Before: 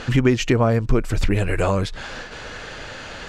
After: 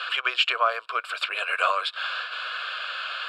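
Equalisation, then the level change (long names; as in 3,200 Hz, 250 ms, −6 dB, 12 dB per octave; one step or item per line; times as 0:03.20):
high-pass filter 940 Hz 24 dB per octave
high-frequency loss of the air 84 metres
phaser with its sweep stopped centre 1,300 Hz, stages 8
+9.0 dB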